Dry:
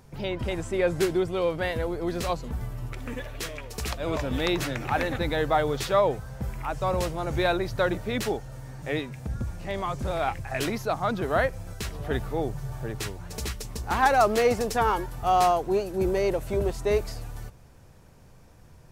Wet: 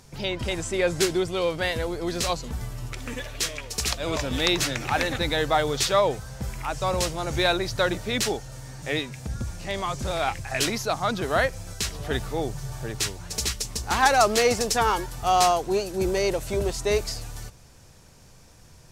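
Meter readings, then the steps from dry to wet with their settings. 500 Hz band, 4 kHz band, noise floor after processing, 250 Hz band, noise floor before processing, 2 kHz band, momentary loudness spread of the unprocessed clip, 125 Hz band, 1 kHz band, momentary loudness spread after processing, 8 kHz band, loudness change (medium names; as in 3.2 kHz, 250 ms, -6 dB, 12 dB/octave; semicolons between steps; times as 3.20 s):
+0.5 dB, +9.0 dB, -51 dBFS, 0.0 dB, -51 dBFS, +3.5 dB, 12 LU, 0.0 dB, +1.0 dB, 12 LU, +10.5 dB, +2.0 dB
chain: peaking EQ 6.1 kHz +11.5 dB 2.3 oct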